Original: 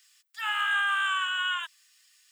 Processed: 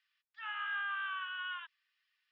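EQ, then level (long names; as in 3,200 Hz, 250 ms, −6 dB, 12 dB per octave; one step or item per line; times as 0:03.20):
Gaussian smoothing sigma 2.8 samples
high-pass filter 960 Hz 12 dB per octave
−8.5 dB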